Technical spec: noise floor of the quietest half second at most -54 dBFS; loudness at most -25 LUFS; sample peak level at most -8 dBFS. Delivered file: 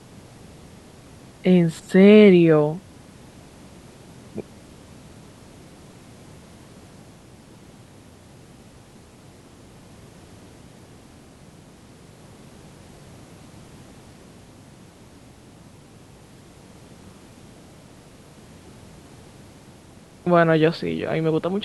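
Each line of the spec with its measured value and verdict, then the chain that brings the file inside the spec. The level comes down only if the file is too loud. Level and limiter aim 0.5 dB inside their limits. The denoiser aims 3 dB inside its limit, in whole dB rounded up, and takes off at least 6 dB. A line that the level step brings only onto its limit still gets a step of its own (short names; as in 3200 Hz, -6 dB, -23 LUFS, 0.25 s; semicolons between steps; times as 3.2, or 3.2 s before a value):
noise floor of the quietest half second -48 dBFS: fail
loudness -17.0 LUFS: fail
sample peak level -3.5 dBFS: fail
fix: gain -8.5 dB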